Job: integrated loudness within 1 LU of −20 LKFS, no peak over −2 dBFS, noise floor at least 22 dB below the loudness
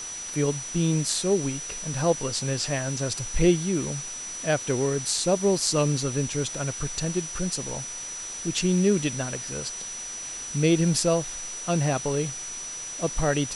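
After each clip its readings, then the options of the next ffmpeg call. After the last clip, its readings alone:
interfering tone 5,900 Hz; level of the tone −34 dBFS; background noise floor −36 dBFS; target noise floor −48 dBFS; integrated loudness −26.0 LKFS; sample peak −6.0 dBFS; target loudness −20.0 LKFS
→ -af "bandreject=frequency=5900:width=30"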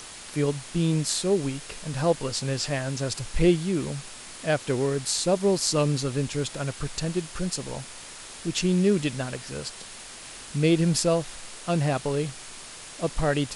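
interfering tone none found; background noise floor −43 dBFS; target noise floor −49 dBFS
→ -af "afftdn=noise_reduction=6:noise_floor=-43"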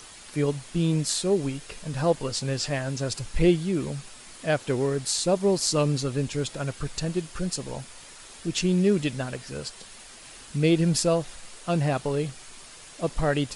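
background noise floor −46 dBFS; target noise floor −49 dBFS
→ -af "afftdn=noise_reduction=6:noise_floor=-46"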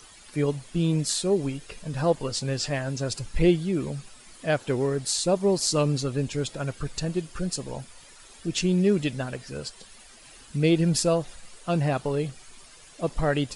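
background noise floor −50 dBFS; integrated loudness −26.5 LKFS; sample peak −6.0 dBFS; target loudness −20.0 LKFS
→ -af "volume=6.5dB,alimiter=limit=-2dB:level=0:latency=1"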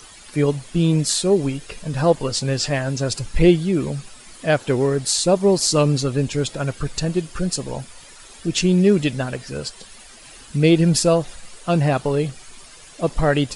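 integrated loudness −20.0 LKFS; sample peak −2.0 dBFS; background noise floor −44 dBFS

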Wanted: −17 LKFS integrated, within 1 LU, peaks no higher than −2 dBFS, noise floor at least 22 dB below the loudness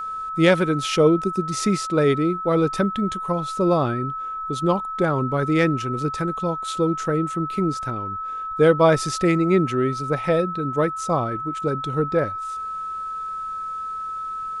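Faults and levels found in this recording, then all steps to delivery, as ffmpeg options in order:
interfering tone 1,300 Hz; level of the tone −27 dBFS; integrated loudness −22.5 LKFS; sample peak −4.5 dBFS; target loudness −17.0 LKFS
→ -af "bandreject=frequency=1300:width=30"
-af "volume=5.5dB,alimiter=limit=-2dB:level=0:latency=1"

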